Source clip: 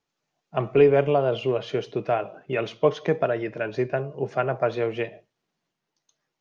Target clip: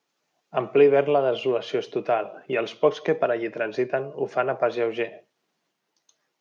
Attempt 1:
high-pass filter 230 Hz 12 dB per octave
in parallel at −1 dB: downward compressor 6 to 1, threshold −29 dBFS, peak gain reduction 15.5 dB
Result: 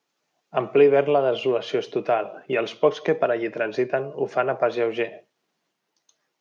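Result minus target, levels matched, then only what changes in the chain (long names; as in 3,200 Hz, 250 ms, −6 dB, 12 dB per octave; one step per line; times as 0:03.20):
downward compressor: peak gain reduction −7 dB
change: downward compressor 6 to 1, threshold −37.5 dBFS, peak gain reduction 22.5 dB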